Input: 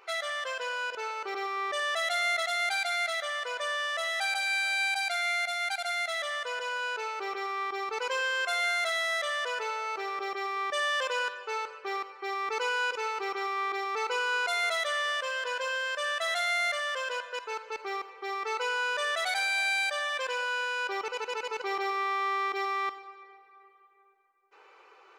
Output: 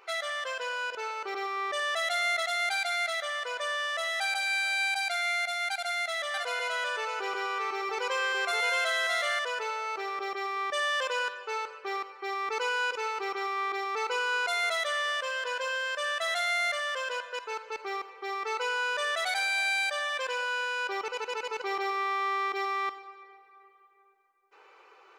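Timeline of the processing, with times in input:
5.72–9.39 echo 0.62 s -4.5 dB

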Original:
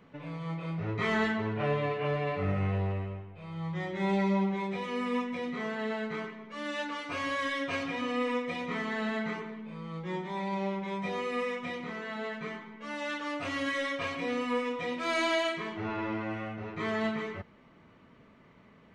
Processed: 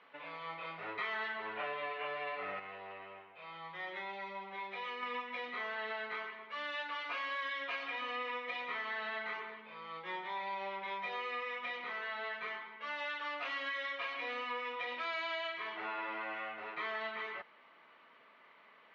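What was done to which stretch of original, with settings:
2.59–5.03 compressor 4:1, threshold -35 dBFS
whole clip: HPF 830 Hz 12 dB/oct; compressor 4:1, threshold -40 dBFS; LPF 4100 Hz 24 dB/oct; gain +3 dB

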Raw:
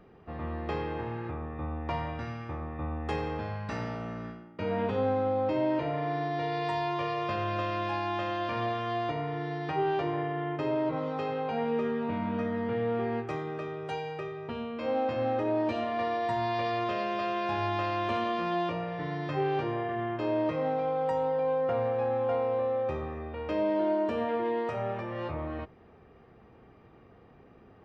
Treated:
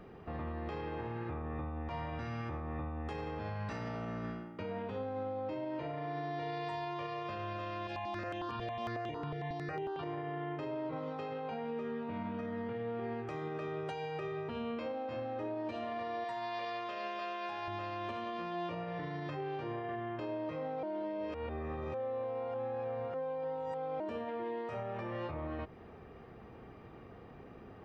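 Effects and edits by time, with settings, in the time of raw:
7.87–10.03 step phaser 11 Hz 270–4600 Hz
16.24–17.68 HPF 630 Hz 6 dB/oct
20.83–24 reverse
whole clip: compressor, threshold -38 dBFS; limiter -35 dBFS; gain +3.5 dB

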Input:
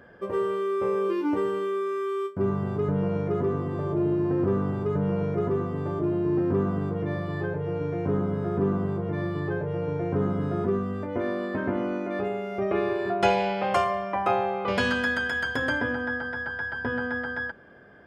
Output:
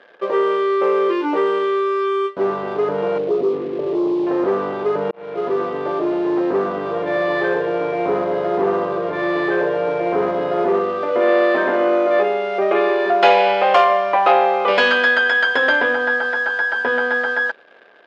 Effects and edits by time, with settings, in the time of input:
3.18–4.27 formant sharpening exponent 2
5.11–5.64 fade in
6.79–12.23 feedback echo 63 ms, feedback 60%, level -6 dB
whole clip: sample leveller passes 2; Chebyshev band-pass 490–3700 Hz, order 2; gain +5.5 dB

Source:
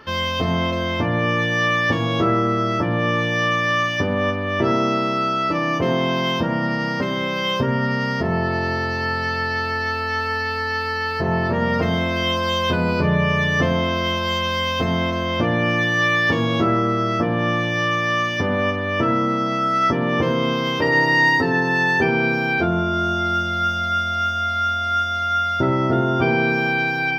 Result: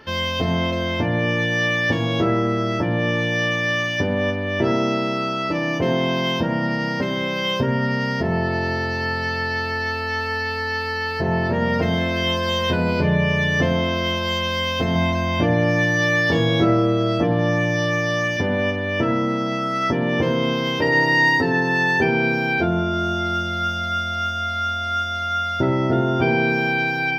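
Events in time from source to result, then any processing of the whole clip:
11–13.11 echo 0.979 s -19.5 dB
14.93–18.37 doubler 24 ms -3 dB
whole clip: bell 1200 Hz -11 dB 0.25 oct

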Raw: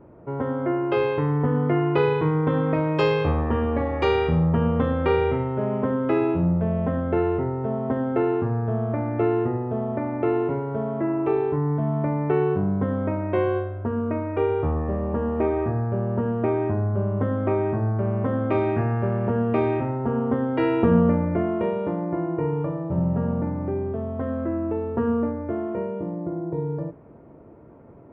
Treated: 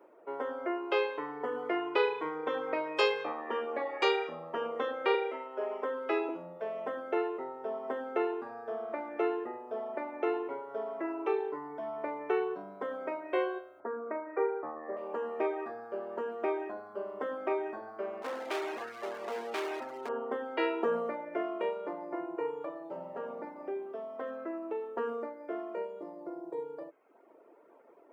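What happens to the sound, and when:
5.14–6.29 HPF 280 Hz 24 dB/oct
13.8–14.97 steep low-pass 2200 Hz 72 dB/oct
18.22–20.09 hard clip -23.5 dBFS
whole clip: reverb removal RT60 0.87 s; HPF 370 Hz 24 dB/oct; high shelf 2600 Hz +11 dB; gain -5.5 dB

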